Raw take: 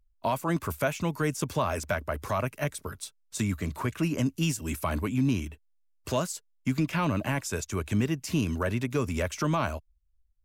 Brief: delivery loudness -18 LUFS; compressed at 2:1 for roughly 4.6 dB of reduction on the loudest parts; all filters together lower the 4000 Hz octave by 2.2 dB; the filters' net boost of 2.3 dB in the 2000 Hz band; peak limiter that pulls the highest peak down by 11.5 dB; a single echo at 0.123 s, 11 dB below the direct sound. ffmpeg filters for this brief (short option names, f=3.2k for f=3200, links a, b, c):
-af "equalizer=f=2k:t=o:g=4.5,equalizer=f=4k:t=o:g=-5.5,acompressor=threshold=-30dB:ratio=2,alimiter=level_in=4dB:limit=-24dB:level=0:latency=1,volume=-4dB,aecho=1:1:123:0.282,volume=20dB"